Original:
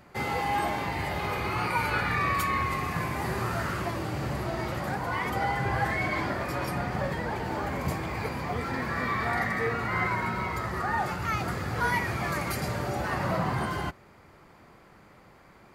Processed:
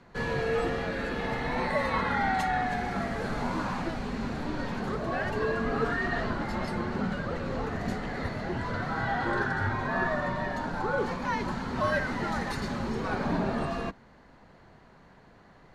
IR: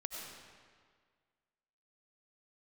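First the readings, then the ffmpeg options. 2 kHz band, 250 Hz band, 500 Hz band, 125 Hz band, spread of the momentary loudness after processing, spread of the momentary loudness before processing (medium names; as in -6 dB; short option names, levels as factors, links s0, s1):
-1.5 dB, +2.5 dB, +2.0 dB, -3.0 dB, 6 LU, 5 LU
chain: -af "highpass=110,lowpass=5900,afreqshift=-360"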